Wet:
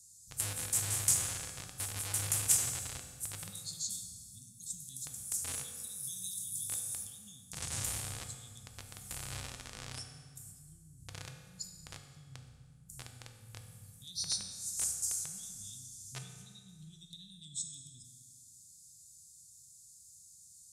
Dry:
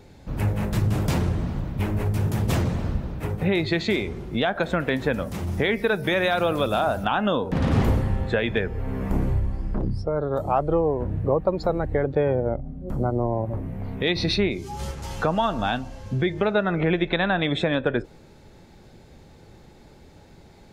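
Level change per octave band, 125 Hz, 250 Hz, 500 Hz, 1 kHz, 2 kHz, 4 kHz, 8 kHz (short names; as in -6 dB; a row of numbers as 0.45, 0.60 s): -22.0 dB, -30.5 dB, -34.0 dB, -26.0 dB, -21.5 dB, -11.0 dB, n/a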